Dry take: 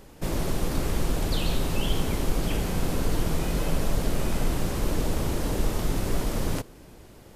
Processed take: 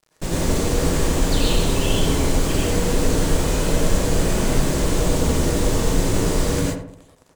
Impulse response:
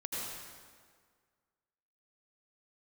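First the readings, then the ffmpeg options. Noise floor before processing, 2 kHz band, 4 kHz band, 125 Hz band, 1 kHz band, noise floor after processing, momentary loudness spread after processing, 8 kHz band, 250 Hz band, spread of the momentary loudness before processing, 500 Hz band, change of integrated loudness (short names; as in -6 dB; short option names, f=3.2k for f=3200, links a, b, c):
-49 dBFS, +8.0 dB, +8.5 dB, +7.0 dB, +7.0 dB, -54 dBFS, 2 LU, +11.5 dB, +8.0 dB, 1 LU, +9.5 dB, +8.0 dB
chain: -filter_complex "[0:a]lowpass=f=7.9k:t=q:w=2,aeval=exprs='val(0)+0.00224*sin(2*PI*640*n/s)':c=same,acrusher=bits=5:mix=0:aa=0.5,asplit=2[a][b];[b]adelay=81,lowpass=f=1.5k:p=1,volume=-6dB,asplit=2[c][d];[d]adelay=81,lowpass=f=1.5k:p=1,volume=0.48,asplit=2[e][f];[f]adelay=81,lowpass=f=1.5k:p=1,volume=0.48,asplit=2[g][h];[h]adelay=81,lowpass=f=1.5k:p=1,volume=0.48,asplit=2[i][j];[j]adelay=81,lowpass=f=1.5k:p=1,volume=0.48,asplit=2[k][l];[l]adelay=81,lowpass=f=1.5k:p=1,volume=0.48[m];[a][c][e][g][i][k][m]amix=inputs=7:normalize=0[n];[1:a]atrim=start_sample=2205,atrim=end_sample=6174,asetrate=43218,aresample=44100[o];[n][o]afir=irnorm=-1:irlink=0,volume=6.5dB"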